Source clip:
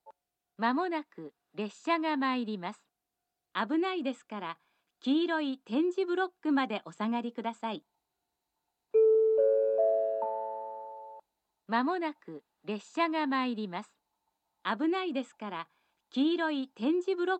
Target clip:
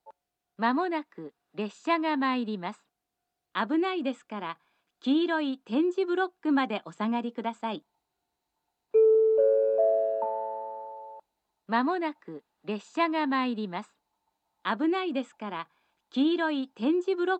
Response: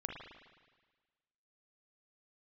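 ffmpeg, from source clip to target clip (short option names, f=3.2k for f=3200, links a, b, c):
-af "highshelf=f=6.1k:g=-5,volume=3dB"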